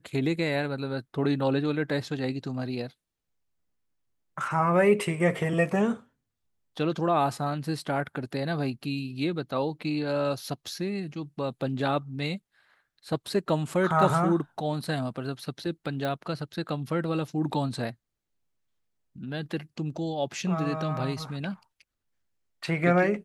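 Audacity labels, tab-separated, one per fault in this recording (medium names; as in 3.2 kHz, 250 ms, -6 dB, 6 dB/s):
16.050000	16.050000	pop -18 dBFS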